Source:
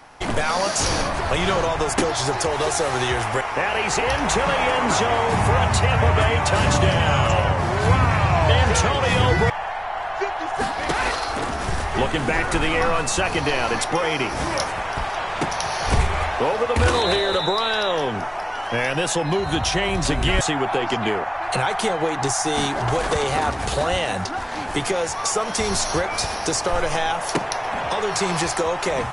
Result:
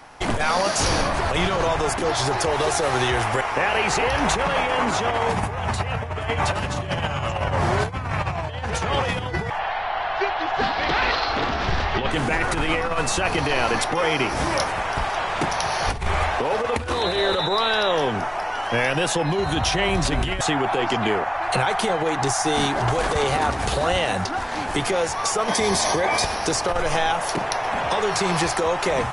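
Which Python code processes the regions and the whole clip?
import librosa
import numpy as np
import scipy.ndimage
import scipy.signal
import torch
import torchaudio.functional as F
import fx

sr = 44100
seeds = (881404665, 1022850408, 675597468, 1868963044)

y = fx.chain(x, sr, fx.lowpass(hz=4800.0, slope=24),
    fx.peak_eq(hz=3800.0, db=5.0, octaves=1.6), at=(9.59, 12.11))
y = fx.chain(y, sr, fx.notch_comb(f0_hz=1400.0),
    fx.env_flatten(amount_pct=70), at=(25.48, 26.25))
y = fx.dynamic_eq(y, sr, hz=7500.0, q=1.4, threshold_db=-37.0, ratio=4.0, max_db=-4)
y = fx.over_compress(y, sr, threshold_db=-21.0, ratio=-0.5)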